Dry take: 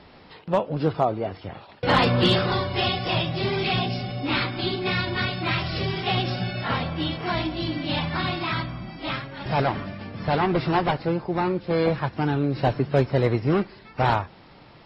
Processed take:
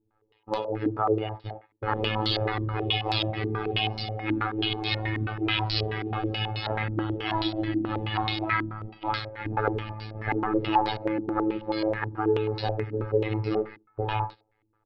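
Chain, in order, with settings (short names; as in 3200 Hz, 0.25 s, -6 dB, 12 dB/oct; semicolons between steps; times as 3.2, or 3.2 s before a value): bin magnitudes rounded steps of 15 dB; notches 60/120/180 Hz; gate -37 dBFS, range -23 dB; low shelf 120 Hz +6 dB; comb 2.4 ms, depth 77%; limiter -15.5 dBFS, peak gain reduction 8.5 dB; robotiser 108 Hz; speakerphone echo 80 ms, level -14 dB; stepped low-pass 9.3 Hz 290–4300 Hz; gain -2.5 dB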